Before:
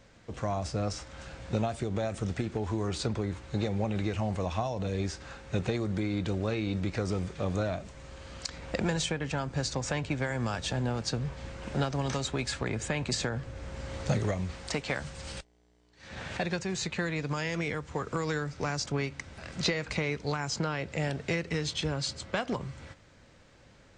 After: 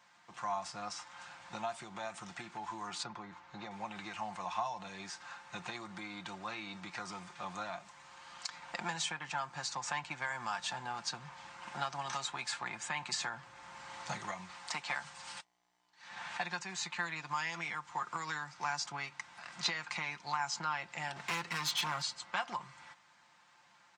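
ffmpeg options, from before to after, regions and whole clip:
-filter_complex "[0:a]asettb=1/sr,asplit=3[a][b][c];[a]atrim=end=3.034[d];[b]atrim=start=3.03:end=3.71,asetpts=PTS-STARTPTS,afade=t=in:d=0.004:c=qsin,afade=t=out:st=0.676:d=0.004:c=qsin,lowpass=f=7k:w=0.5412,lowpass=f=7k:w=1.3066,highshelf=f=2.3k:g=-8.5[e];[c]atrim=start=3.706[f];[d][e]acrossfade=d=0.004:c1=hsin:c2=qsin[g];[g][f]acrossfade=d=0.004:c1=qsin:c2=hsin,asettb=1/sr,asplit=3[h][i][j];[h]atrim=end=21.164[k];[i]atrim=start=21.16:end=22.02,asetpts=PTS-STARTPTS,afade=t=in:d=0.004:c=qsin,afade=t=out:st=0.856:d=0.004:c=qsin,volume=31.5dB,asoftclip=hard,volume=-31.5dB,acontrast=72[l];[j]atrim=start=22.016[m];[k][l]acrossfade=d=0.004:c1=hsin:c2=qsin[n];[n][m]acrossfade=d=0.004:c1=qsin:c2=hsin,highpass=170,lowshelf=f=660:t=q:w=3:g=-10.5,aecho=1:1:5.7:0.48,volume=-5dB"

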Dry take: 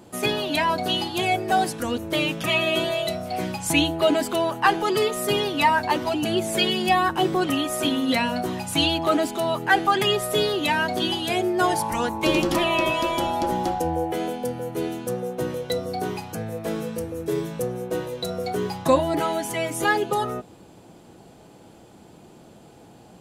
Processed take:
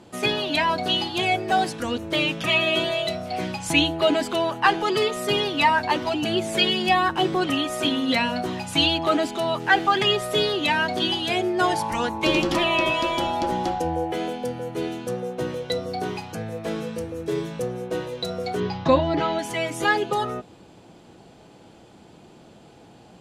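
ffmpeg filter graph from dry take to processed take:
-filter_complex "[0:a]asettb=1/sr,asplit=3[a][b][c];[a]atrim=end=9.604[d];[b]atrim=start=9.6:end=10.12,asetpts=PTS-STARTPTS,afade=t=in:d=0.004:c=qsin,afade=t=out:st=0.516:d=0.004:c=qsin,lowpass=7.7k,acrusher=bits=8:dc=4:mix=0:aa=0.000001[e];[c]atrim=start=10.116[f];[d][e]acrossfade=d=0.004:c1=hsin:c2=qsin[g];[g][f]acrossfade=d=0.004:c1=qsin:c2=hsin,asettb=1/sr,asplit=3[h][i][j];[h]atrim=end=18.604[k];[i]atrim=start=18.6:end=19.39,asetpts=PTS-STARTPTS,afade=t=in:d=0.004:c=qsin,afade=t=out:st=0.786:d=0.004:c=qsin,lowpass=f=5.3k:w=0.5412,lowpass=f=5.3k:w=1.3066,lowshelf=f=170:g=7[l];[j]atrim=start=19.386[m];[k][l]acrossfade=d=0.004:c1=hsin:c2=qsin[n];[n][m]acrossfade=d=0.004:c1=qsin:c2=hsin,lowpass=3.6k,aemphasis=mode=production:type=75fm"

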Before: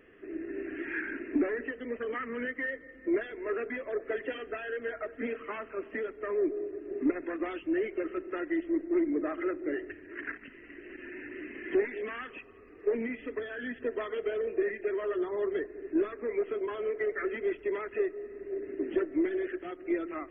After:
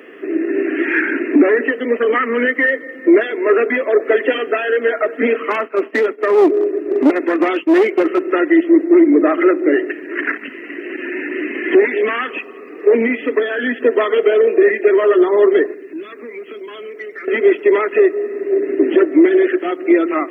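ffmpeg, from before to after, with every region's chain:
-filter_complex "[0:a]asettb=1/sr,asplit=3[a][b][c];[a]atrim=end=5.504[d];[b]atrim=start=5.5:end=8.25,asetpts=PTS-STARTPTS,afade=t=in:d=0.004:c=qsin,afade=t=out:st=2.746:d=0.004:c=qsin,agate=range=-33dB:threshold=-42dB:ratio=3:release=100:detection=peak,aeval=exprs='clip(val(0),-1,0.0299)':c=same[e];[c]atrim=start=8.246[f];[d][e]acrossfade=d=0.004:c1=hsin:c2=qsin[g];[g][f]acrossfade=d=0.004:c1=qsin:c2=hsin,asettb=1/sr,asplit=3[h][i][j];[h]atrim=end=15.744[k];[i]atrim=start=15.74:end=17.28,asetpts=PTS-STARTPTS,afade=t=in:d=0.004:c=qsin,afade=t=out:st=1.536:d=0.004:c=qsin,equalizer=f=640:t=o:w=2.6:g=-10.5,acrossover=split=170|3000[l][m][n];[m]acompressor=threshold=-51dB:ratio=4:attack=3.2:release=140:knee=2.83:detection=peak[o];[l][o][n]amix=inputs=3:normalize=0[p];[j]atrim=start=17.276[q];[k][p]acrossfade=d=0.004:c1=hsin:c2=qsin[r];[r][q]acrossfade=d=0.004:c1=qsin:c2=hsin,highpass=f=240:w=0.5412,highpass=f=240:w=1.3066,equalizer=f=1.6k:w=7.1:g=-3.5,alimiter=level_in=22dB:limit=-1dB:release=50:level=0:latency=1,volume=-2dB"

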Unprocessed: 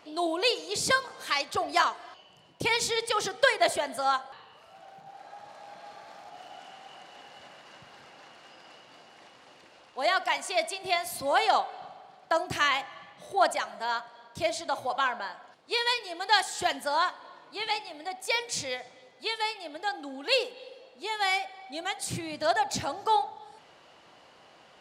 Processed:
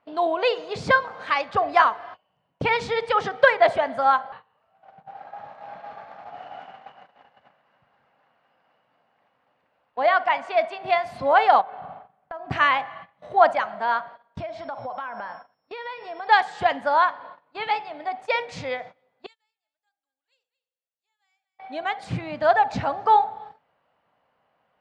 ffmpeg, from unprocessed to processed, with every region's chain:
-filter_complex "[0:a]asettb=1/sr,asplit=3[a][b][c];[a]atrim=end=10.024[d];[b]atrim=start=10.02:end=10.88,asetpts=PTS-STARTPTS,afade=t=in:d=0.004:c=qsin,afade=t=out:st=0.856:d=0.004:c=qsin,highpass=f=130:p=1,highshelf=f=6.2k:g=-8[e];[c]atrim=start=10.876[f];[d][e]acrossfade=d=0.004:c1=hsin:c2=qsin[g];[g][f]acrossfade=d=0.004:c1=qsin:c2=hsin,asettb=1/sr,asplit=3[h][i][j];[h]atrim=end=11.614[k];[i]atrim=start=11.61:end=12.51,asetpts=PTS-STARTPTS,afade=t=in:d=0.004:c=qsin,afade=t=out:st=0.896:d=0.004:c=qsin,acompressor=threshold=-41dB:ratio=5:attack=3.2:release=140:knee=1:detection=peak,bass=f=250:g=6,treble=f=4k:g=-10[l];[j]atrim=start=12.506[m];[k][l]acrossfade=d=0.004:c1=hsin:c2=qsin[n];[n][m]acrossfade=d=0.004:c1=qsin:c2=hsin,asettb=1/sr,asplit=3[o][p][q];[o]atrim=end=14.404[r];[p]atrim=start=14.4:end=16.27,asetpts=PTS-STARTPTS,afade=t=in:d=0.004:c=qsin,afade=t=out:st=1.866:d=0.004:c=qsin,aemphasis=mode=reproduction:type=50kf,aeval=exprs='val(0)+0.00355*sin(2*PI*5400*n/s)':c=same,acompressor=threshold=-36dB:ratio=8:attack=3.2:release=140:knee=1:detection=peak[s];[q]atrim=start=16.266[t];[r][s]acrossfade=d=0.004:c1=hsin:c2=qsin[u];[u][t]acrossfade=d=0.004:c1=qsin:c2=hsin,asettb=1/sr,asplit=3[v][w][x];[v]atrim=end=19.264[y];[w]atrim=start=19.26:end=21.59,asetpts=PTS-STARTPTS,afade=t=in:d=0.004:c=qsin,afade=t=out:st=2.326:d=0.004:c=qsin,bandpass=f=7.3k:t=q:w=7.9,aecho=1:1:225:0.2,atrim=end_sample=102753[z];[x]atrim=start=21.586[aa];[y][z]acrossfade=d=0.004:c1=hsin:c2=qsin[ab];[ab][aa]acrossfade=d=0.004:c1=qsin:c2=hsin,lowpass=1.8k,agate=range=-20dB:threshold=-48dB:ratio=16:detection=peak,equalizer=f=350:w=3.4:g=-10.5,volume=8.5dB"

